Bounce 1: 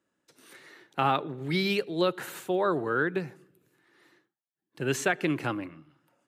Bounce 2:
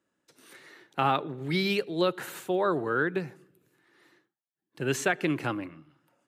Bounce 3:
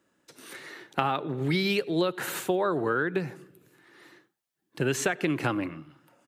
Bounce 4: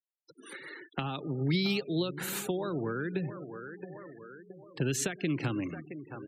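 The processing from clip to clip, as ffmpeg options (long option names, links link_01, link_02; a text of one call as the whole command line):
ffmpeg -i in.wav -af anull out.wav
ffmpeg -i in.wav -filter_complex "[0:a]acompressor=threshold=-31dB:ratio=6,asplit=2[link_01][link_02];[link_02]adelay=93.29,volume=-28dB,highshelf=frequency=4000:gain=-2.1[link_03];[link_01][link_03]amix=inputs=2:normalize=0,volume=8dB" out.wav
ffmpeg -i in.wav -filter_complex "[0:a]asplit=2[link_01][link_02];[link_02]adelay=670,lowpass=frequency=2500:poles=1,volume=-15dB,asplit=2[link_03][link_04];[link_04]adelay=670,lowpass=frequency=2500:poles=1,volume=0.5,asplit=2[link_05][link_06];[link_06]adelay=670,lowpass=frequency=2500:poles=1,volume=0.5,asplit=2[link_07][link_08];[link_08]adelay=670,lowpass=frequency=2500:poles=1,volume=0.5,asplit=2[link_09][link_10];[link_10]adelay=670,lowpass=frequency=2500:poles=1,volume=0.5[link_11];[link_01][link_03][link_05][link_07][link_09][link_11]amix=inputs=6:normalize=0,acrossover=split=300|3000[link_12][link_13][link_14];[link_13]acompressor=threshold=-41dB:ratio=3[link_15];[link_12][link_15][link_14]amix=inputs=3:normalize=0,afftfilt=real='re*gte(hypot(re,im),0.00708)':imag='im*gte(hypot(re,im),0.00708)':win_size=1024:overlap=0.75" out.wav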